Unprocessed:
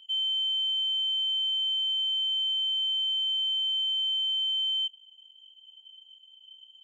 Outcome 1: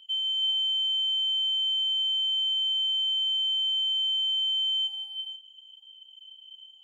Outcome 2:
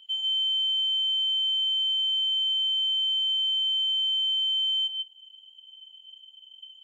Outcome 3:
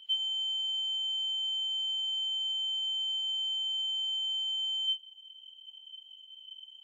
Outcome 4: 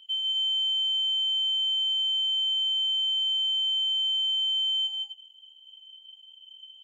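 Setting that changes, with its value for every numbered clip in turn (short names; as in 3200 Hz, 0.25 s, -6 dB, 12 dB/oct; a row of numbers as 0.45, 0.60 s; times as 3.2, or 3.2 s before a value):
non-linear reverb, gate: 0.52, 0.17, 0.11, 0.28 s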